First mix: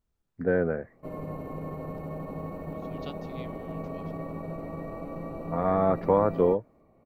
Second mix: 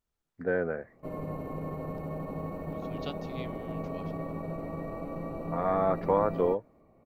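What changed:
first voice: add bass shelf 400 Hz -9 dB; second voice +3.5 dB

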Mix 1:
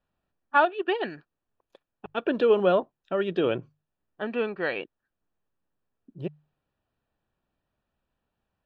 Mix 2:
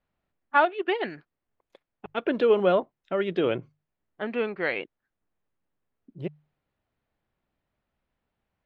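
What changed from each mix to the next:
master: remove Butterworth band-stop 2.1 kHz, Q 6.1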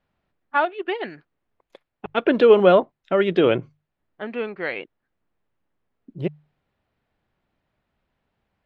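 second voice +7.5 dB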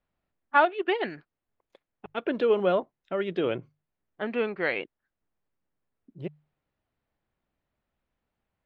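second voice -10.0 dB

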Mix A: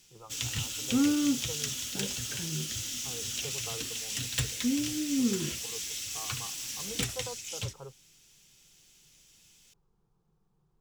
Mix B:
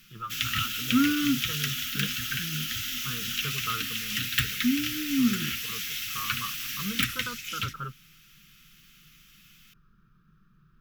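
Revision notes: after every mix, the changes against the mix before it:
first voice +10.5 dB; master: add FFT filter 140 Hz 0 dB, 260 Hz +5 dB, 370 Hz -10 dB, 820 Hz -29 dB, 1.3 kHz +13 dB, 2.8 kHz +9 dB, 8.2 kHz -7 dB, 13 kHz +10 dB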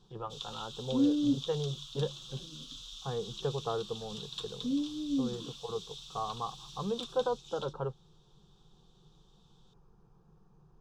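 second voice: add two resonant band-passes 390 Hz, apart 0.92 oct; background: add two resonant band-passes 2 kHz, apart 1.7 oct; master: remove FFT filter 140 Hz 0 dB, 260 Hz +5 dB, 370 Hz -10 dB, 820 Hz -29 dB, 1.3 kHz +13 dB, 2.8 kHz +9 dB, 8.2 kHz -7 dB, 13 kHz +10 dB

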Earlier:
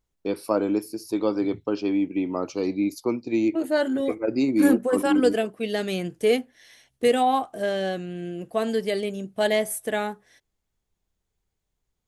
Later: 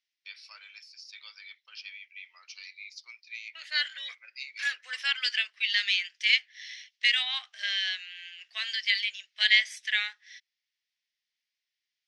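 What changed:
second voice +10.5 dB; master: add elliptic band-pass 1.9–5.5 kHz, stop band 80 dB

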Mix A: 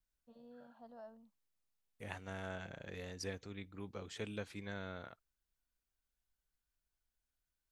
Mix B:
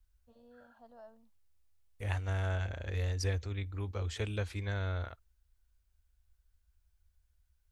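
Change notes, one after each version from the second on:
second voice +6.0 dB; master: add resonant low shelf 110 Hz +12 dB, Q 3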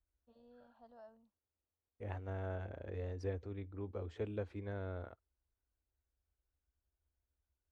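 first voice -3.5 dB; second voice: add band-pass filter 360 Hz, Q 0.86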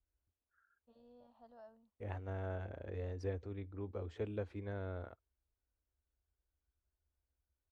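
first voice: entry +0.60 s

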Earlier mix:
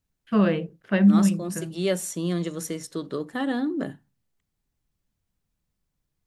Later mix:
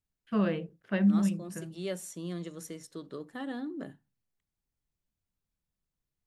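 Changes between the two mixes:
first voice -7.5 dB; second voice -11.0 dB

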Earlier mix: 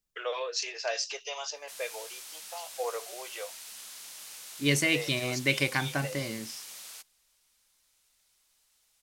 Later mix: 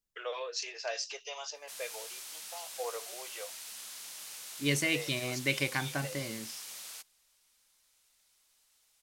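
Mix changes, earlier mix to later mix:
first voice -4.5 dB; second voice -4.0 dB

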